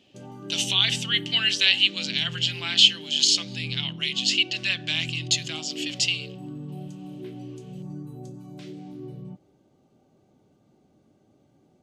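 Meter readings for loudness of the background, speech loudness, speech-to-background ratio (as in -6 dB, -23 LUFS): -38.5 LUFS, -22.0 LUFS, 16.5 dB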